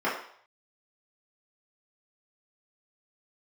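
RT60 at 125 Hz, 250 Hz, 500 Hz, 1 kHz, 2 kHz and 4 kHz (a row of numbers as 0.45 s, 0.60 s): 0.40 s, 0.40 s, 0.60 s, 0.60 s, 0.55 s, 0.60 s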